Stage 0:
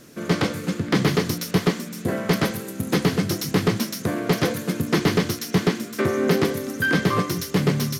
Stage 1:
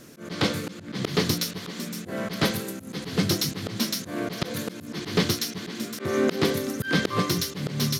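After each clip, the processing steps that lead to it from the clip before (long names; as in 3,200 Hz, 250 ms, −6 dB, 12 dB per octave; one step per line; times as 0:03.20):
dynamic equaliser 3,900 Hz, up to +7 dB, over −46 dBFS, Q 1.5
volume swells 178 ms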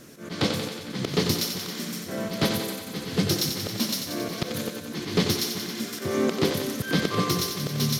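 dynamic equaliser 1,600 Hz, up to −4 dB, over −40 dBFS, Q 1
on a send: feedback echo with a high-pass in the loop 91 ms, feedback 71%, high-pass 270 Hz, level −6.5 dB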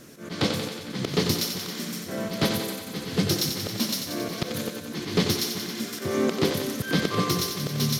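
no processing that can be heard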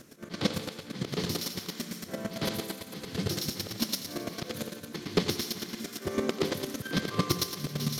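square-wave tremolo 8.9 Hz, depth 65%, duty 15%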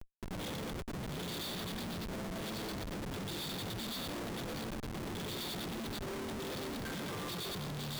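hearing-aid frequency compression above 3,200 Hz 4 to 1
comparator with hysteresis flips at −38.5 dBFS
level −7 dB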